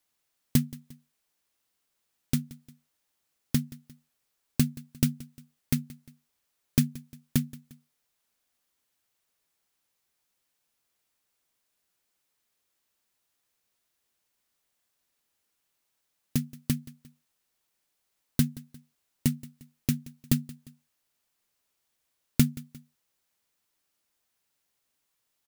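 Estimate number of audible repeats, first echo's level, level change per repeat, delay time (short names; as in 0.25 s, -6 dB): 2, -20.0 dB, -6.5 dB, 0.176 s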